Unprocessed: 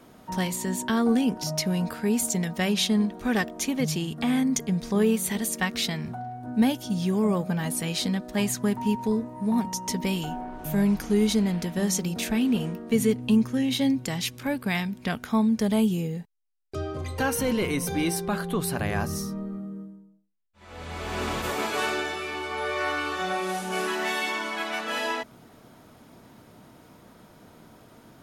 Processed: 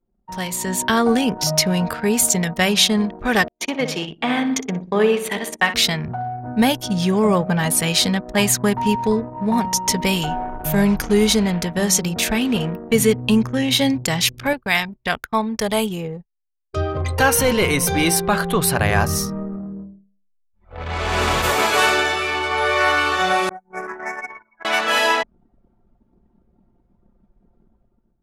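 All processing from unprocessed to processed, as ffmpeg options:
-filter_complex "[0:a]asettb=1/sr,asplit=3[s0][s1][s2];[s0]atrim=end=3.484[s3];[s1]atrim=start=3.48:end=5.74,asetpts=PTS-STARTPTS,afade=t=in:d=0.004:c=qsin,afade=t=out:st=2.256:d=0.004:c=qsin,agate=range=0.0224:threshold=0.0355:ratio=3:release=100:detection=peak,acrossover=split=210 4100:gain=0.158 1 0.224[s4][s5][s6];[s4][s5][s6]amix=inputs=3:normalize=0,aecho=1:1:61|122|183|244|305|366:0.299|0.164|0.0903|0.0497|0.0273|0.015,atrim=end_sample=99666[s7];[s2]atrim=start=5.736[s8];[s3][s7]acrossfade=d=0.004:c1=hsin:c2=qsin[s9];[s9][s8]acrossfade=d=0.004:c1=qsin:c2=hsin,asettb=1/sr,asplit=3[s10][s11][s12];[s10]atrim=end=14.534[s13];[s11]atrim=start=14.53:end=16.77,asetpts=PTS-STARTPTS,afade=t=in:d=0.004:c=qsin,afade=t=out:st=2.236:d=0.004:c=qsin,agate=range=0.251:threshold=0.01:ratio=16:release=100:detection=peak,equalizer=f=160:w=0.62:g=-8[s14];[s12]atrim=start=16.766[s15];[s13][s14]acrossfade=d=0.004:c1=hsin:c2=qsin[s16];[s16][s15]acrossfade=d=0.004:c1=qsin:c2=hsin,asettb=1/sr,asplit=3[s17][s18][s19];[s17]atrim=end=23.494[s20];[s18]atrim=start=23.49:end=24.65,asetpts=PTS-STARTPTS,afade=t=in:d=0.004:c=qsin,afade=t=out:st=1.156:d=0.004:c=qsin,agate=range=0.0224:threshold=0.0891:ratio=3:release=100:detection=peak,asuperstop=centerf=3500:order=12:qfactor=1.2[s21];[s19]atrim=start=24.646[s22];[s20][s21]acrossfade=d=0.004:c1=hsin:c2=qsin[s23];[s23][s22]acrossfade=d=0.004:c1=qsin:c2=hsin,anlmdn=1,equalizer=f=250:w=1.1:g=-8.5,dynaudnorm=f=240:g=5:m=4.22"

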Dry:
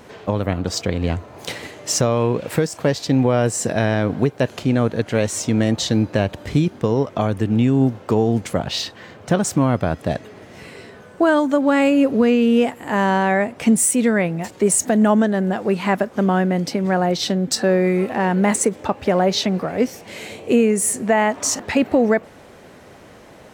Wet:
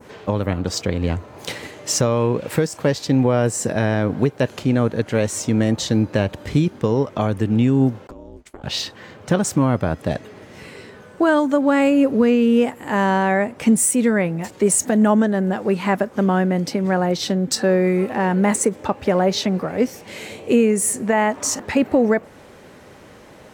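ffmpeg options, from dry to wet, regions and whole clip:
-filter_complex "[0:a]asettb=1/sr,asplit=3[s0][s1][s2];[s0]atrim=end=8.074[s3];[s1]atrim=start=8.07:end=8.64,asetpts=PTS-STARTPTS,afade=t=in:d=0.004:c=qsin,afade=t=out:st=0.566:d=0.004:c=qsin,agate=range=0.0224:threshold=0.0708:ratio=3:release=100:detection=peak,acompressor=threshold=0.0251:ratio=8:attack=3.2:release=140:knee=1:detection=peak,aeval=exprs='val(0)*sin(2*PI*150*n/s)':c=same[s4];[s2]atrim=start=8.636[s5];[s3][s4]acrossfade=d=0.004:c1=hsin:c2=qsin[s6];[s6][s5]acrossfade=d=0.004:c1=qsin:c2=hsin,bandreject=f=690:w=13,adynamicequalizer=threshold=0.0141:dfrequency=3600:dqfactor=0.84:tfrequency=3600:tqfactor=0.84:attack=5:release=100:ratio=0.375:range=2:mode=cutabove:tftype=bell"

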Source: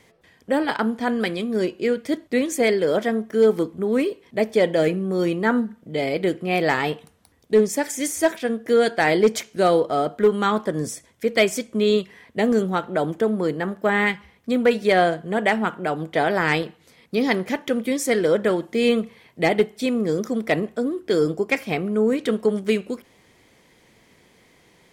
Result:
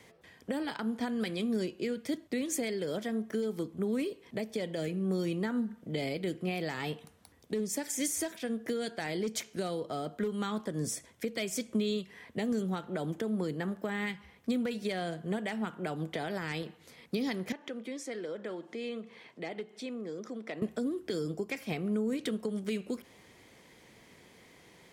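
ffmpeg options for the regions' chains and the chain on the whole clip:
-filter_complex "[0:a]asettb=1/sr,asplit=3[s0][s1][s2];[s0]atrim=end=17.524[s3];[s1]atrim=start=17.52:end=20.62,asetpts=PTS-STARTPTS,afade=t=in:d=0.004:c=qsin,afade=t=out:st=3.096:d=0.004:c=qsin,acompressor=threshold=0.00562:ratio=2:attack=3.2:release=140:knee=1:detection=peak,highpass=200,lowpass=6800[s4];[s2]atrim=start=20.616[s5];[s3][s4]acrossfade=d=0.004:c1=hsin:c2=qsin[s6];[s6][s5]acrossfade=d=0.004:c1=qsin:c2=hsin,highpass=f=44:p=1,alimiter=limit=0.133:level=0:latency=1:release=339,acrossover=split=250|3000[s7][s8][s9];[s8]acompressor=threshold=0.0178:ratio=4[s10];[s7][s10][s9]amix=inputs=3:normalize=0,volume=0.841"

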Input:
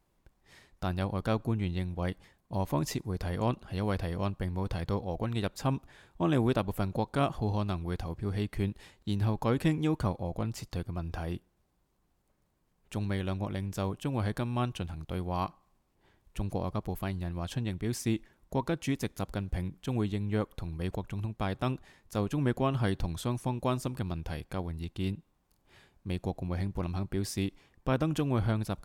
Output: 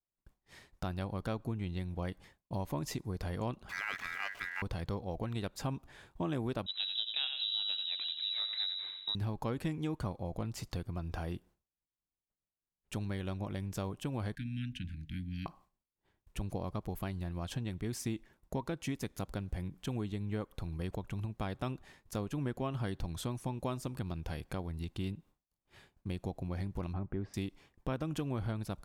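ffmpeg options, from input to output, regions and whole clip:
-filter_complex "[0:a]asettb=1/sr,asplit=3[s0][s1][s2];[s0]atrim=end=3.694[s3];[s1]atrim=start=3.69:end=4.62,asetpts=PTS-STARTPTS,afade=t=in:d=0.004:c=qsin,afade=t=out:st=0.926:d=0.004:c=qsin,aeval=exprs='val(0)+0.5*0.00944*sgn(val(0))':c=same,highpass=140,aeval=exprs='val(0)*sin(2*PI*1800*n/s)':c=same[s4];[s2]atrim=start=4.616[s5];[s3][s4]acrossfade=d=0.004:c1=hsin:c2=qsin[s6];[s6][s5]acrossfade=d=0.004:c1=qsin:c2=hsin,asettb=1/sr,asplit=3[s7][s8][s9];[s7]atrim=end=6.664[s10];[s8]atrim=start=6.66:end=9.15,asetpts=PTS-STARTPTS,afade=t=in:d=0.004:c=qsin,afade=t=out:st=2.486:d=0.004:c=qsin,asplit=2[s11][s12];[s12]adelay=89,lowpass=f=2100:p=1,volume=0.501,asplit=2[s13][s14];[s14]adelay=89,lowpass=f=2100:p=1,volume=0.55,asplit=2[s15][s16];[s16]adelay=89,lowpass=f=2100:p=1,volume=0.55,asplit=2[s17][s18];[s18]adelay=89,lowpass=f=2100:p=1,volume=0.55,asplit=2[s19][s20];[s20]adelay=89,lowpass=f=2100:p=1,volume=0.55,asplit=2[s21][s22];[s22]adelay=89,lowpass=f=2100:p=1,volume=0.55,asplit=2[s23][s24];[s24]adelay=89,lowpass=f=2100:p=1,volume=0.55[s25];[s11][s13][s15][s17][s19][s21][s23][s25]amix=inputs=8:normalize=0,atrim=end_sample=109809,lowpass=f=3400:t=q:w=0.5098,lowpass=f=3400:t=q:w=0.6013,lowpass=f=3400:t=q:w=0.9,lowpass=f=3400:t=q:w=2.563,afreqshift=-4000[s26];[s9]atrim=start=9.146[s27];[s10][s26]acrossfade=d=0.004:c1=hsin:c2=qsin[s28];[s28][s27]acrossfade=d=0.004:c1=qsin:c2=hsin,asettb=1/sr,asplit=3[s29][s30][s31];[s29]atrim=end=14.354[s32];[s30]atrim=start=14.35:end=15.46,asetpts=PTS-STARTPTS,afade=t=in:d=0.004:c=qsin,afade=t=out:st=1.106:d=0.004:c=qsin,asuperstop=centerf=690:order=20:qfactor=0.53,bass=f=250:g=-4,treble=f=4000:g=-12,bandreject=f=50:t=h:w=6,bandreject=f=100:t=h:w=6,bandreject=f=150:t=h:w=6,bandreject=f=200:t=h:w=6,bandreject=f=250:t=h:w=6,bandreject=f=300:t=h:w=6,bandreject=f=350:t=h:w=6[s33];[s31]atrim=start=15.456[s34];[s32][s33]acrossfade=d=0.004:c1=hsin:c2=qsin[s35];[s35][s34]acrossfade=d=0.004:c1=qsin:c2=hsin,asettb=1/sr,asplit=3[s36][s37][s38];[s36]atrim=end=26.934[s39];[s37]atrim=start=26.93:end=27.34,asetpts=PTS-STARTPTS,afade=t=in:d=0.004:c=qsin,afade=t=out:st=0.406:d=0.004:c=qsin,lowpass=1800,aemphasis=mode=reproduction:type=50fm[s40];[s38]atrim=start=27.336[s41];[s39][s40]acrossfade=d=0.004:c1=hsin:c2=qsin[s42];[s42][s41]acrossfade=d=0.004:c1=qsin:c2=hsin,acompressor=threshold=0.0141:ratio=2.5,agate=range=0.0224:threshold=0.00158:ratio=3:detection=peak,volume=1.12"

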